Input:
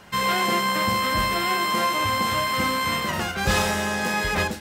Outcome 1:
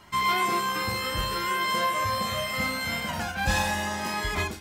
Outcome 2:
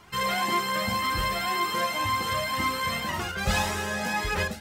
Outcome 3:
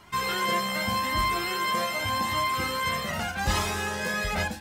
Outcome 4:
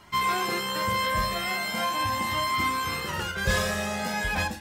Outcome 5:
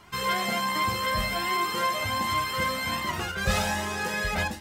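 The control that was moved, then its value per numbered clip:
flanger whose copies keep moving one way, speed: 0.24, 1.9, 0.84, 0.41, 1.3 Hertz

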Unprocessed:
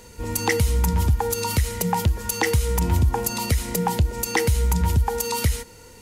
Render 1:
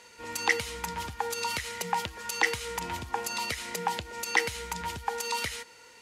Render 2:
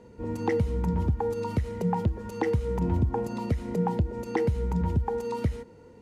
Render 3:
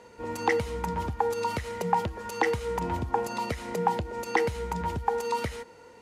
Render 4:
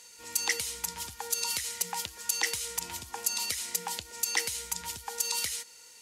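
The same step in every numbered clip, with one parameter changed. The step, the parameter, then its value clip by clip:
resonant band-pass, frequency: 2,200, 270, 780, 6,000 Hertz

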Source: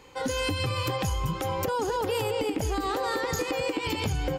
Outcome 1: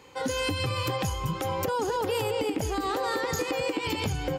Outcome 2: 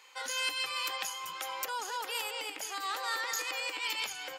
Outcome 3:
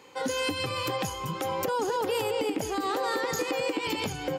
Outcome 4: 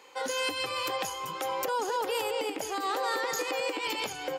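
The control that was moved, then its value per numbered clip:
high-pass filter, corner frequency: 70, 1,300, 180, 490 Hertz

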